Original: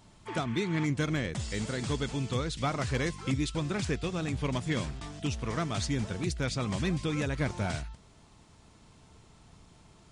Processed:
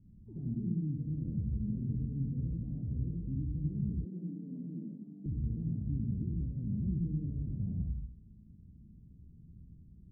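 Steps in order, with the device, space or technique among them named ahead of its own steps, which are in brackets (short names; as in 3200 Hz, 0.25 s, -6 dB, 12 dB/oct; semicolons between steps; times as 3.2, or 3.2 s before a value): club heard from the street (limiter -27 dBFS, peak gain reduction 10.5 dB; LPF 240 Hz 24 dB/oct; reverb RT60 0.65 s, pre-delay 69 ms, DRR -0.5 dB); 4.05–5.26 steep high-pass 180 Hz 48 dB/oct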